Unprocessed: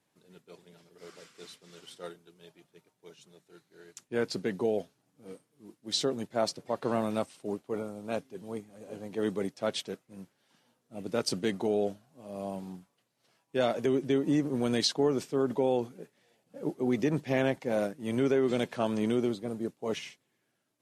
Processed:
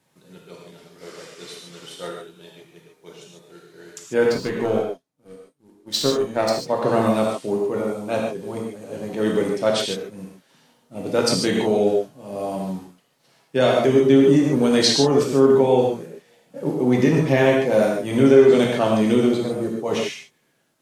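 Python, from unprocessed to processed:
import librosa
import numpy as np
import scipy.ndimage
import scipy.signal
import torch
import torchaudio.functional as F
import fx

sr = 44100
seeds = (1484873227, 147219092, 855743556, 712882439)

y = fx.power_curve(x, sr, exponent=1.4, at=(4.28, 6.56))
y = fx.rev_gated(y, sr, seeds[0], gate_ms=170, shape='flat', drr_db=-1.5)
y = F.gain(torch.from_numpy(y), 8.0).numpy()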